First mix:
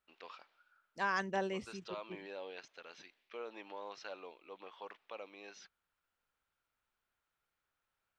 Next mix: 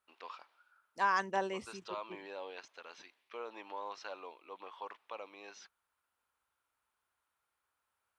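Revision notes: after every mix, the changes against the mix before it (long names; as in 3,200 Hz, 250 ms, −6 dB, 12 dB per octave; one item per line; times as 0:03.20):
second voice: add high-pass filter 58 Hz
master: add graphic EQ with 15 bands 160 Hz −7 dB, 1,000 Hz +7 dB, 10,000 Hz +9 dB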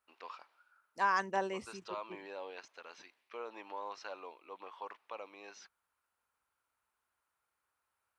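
master: add parametric band 3,400 Hz −4 dB 0.38 octaves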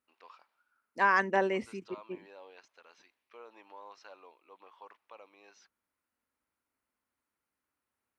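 first voice −7.0 dB
second voice: add octave-band graphic EQ 250/500/2,000/8,000 Hz +11/+6/+10/−4 dB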